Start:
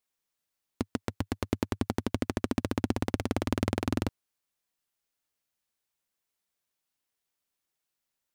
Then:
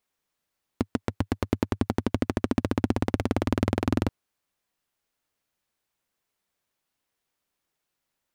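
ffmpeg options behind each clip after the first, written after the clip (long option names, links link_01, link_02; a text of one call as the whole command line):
ffmpeg -i in.wav -filter_complex "[0:a]highshelf=frequency=3100:gain=-7,asplit=2[link_01][link_02];[link_02]alimiter=limit=-20dB:level=0:latency=1,volume=2.5dB[link_03];[link_01][link_03]amix=inputs=2:normalize=0" out.wav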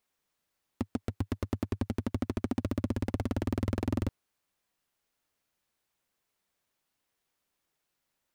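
ffmpeg -i in.wav -af "asoftclip=type=tanh:threshold=-22dB" out.wav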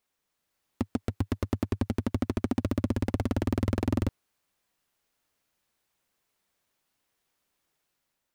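ffmpeg -i in.wav -af "dynaudnorm=framelen=140:gausssize=7:maxgain=3.5dB" out.wav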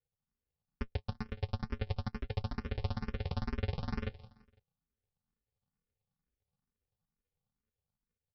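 ffmpeg -i in.wav -filter_complex "[0:a]aresample=11025,acrusher=samples=34:mix=1:aa=0.000001,aresample=44100,aecho=1:1:168|336|504:0.112|0.0494|0.0217,asplit=2[link_01][link_02];[link_02]afreqshift=2.2[link_03];[link_01][link_03]amix=inputs=2:normalize=1,volume=-4.5dB" out.wav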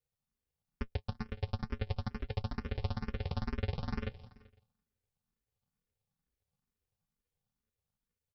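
ffmpeg -i in.wav -af "aecho=1:1:385:0.0631" out.wav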